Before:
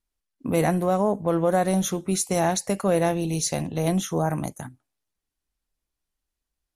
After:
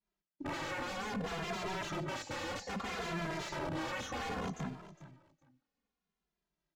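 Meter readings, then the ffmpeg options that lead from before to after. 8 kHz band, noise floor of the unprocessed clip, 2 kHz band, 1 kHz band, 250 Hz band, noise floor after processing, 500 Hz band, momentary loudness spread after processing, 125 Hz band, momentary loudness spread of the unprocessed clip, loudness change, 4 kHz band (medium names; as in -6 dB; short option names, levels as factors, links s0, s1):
-20.0 dB, -85 dBFS, -4.5 dB, -12.0 dB, -16.5 dB, under -85 dBFS, -18.0 dB, 6 LU, -16.5 dB, 7 LU, -15.0 dB, -7.0 dB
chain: -filter_complex "[0:a]lowshelf=f=130:t=q:w=3:g=-7.5,aresample=16000,aeval=exprs='(mod(18.8*val(0)+1,2)-1)/18.8':c=same,aresample=44100,highpass=f=57:p=1,acompressor=threshold=0.0224:ratio=6,aeval=exprs='(tanh(79.4*val(0)+0.25)-tanh(0.25))/79.4':c=same,aeval=exprs='0.0708*sin(PI/2*6.31*val(0)/0.0708)':c=same,agate=range=0.0224:threshold=0.00112:ratio=3:detection=peak,alimiter=level_in=2.82:limit=0.0631:level=0:latency=1:release=73,volume=0.355,aemphasis=mode=reproduction:type=75fm,aecho=1:1:410|820:0.178|0.032,asplit=2[s0][s1];[s1]adelay=2.5,afreqshift=-0.63[s2];[s0][s2]amix=inputs=2:normalize=1"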